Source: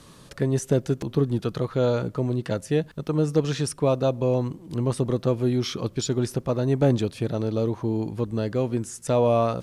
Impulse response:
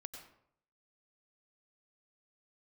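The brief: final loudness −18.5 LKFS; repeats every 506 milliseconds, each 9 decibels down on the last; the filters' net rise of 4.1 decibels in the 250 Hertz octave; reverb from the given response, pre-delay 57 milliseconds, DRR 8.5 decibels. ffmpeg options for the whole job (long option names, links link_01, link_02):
-filter_complex "[0:a]equalizer=frequency=250:width_type=o:gain=5,aecho=1:1:506|1012|1518|2024:0.355|0.124|0.0435|0.0152,asplit=2[link_01][link_02];[1:a]atrim=start_sample=2205,adelay=57[link_03];[link_02][link_03]afir=irnorm=-1:irlink=0,volume=-4.5dB[link_04];[link_01][link_04]amix=inputs=2:normalize=0,volume=3.5dB"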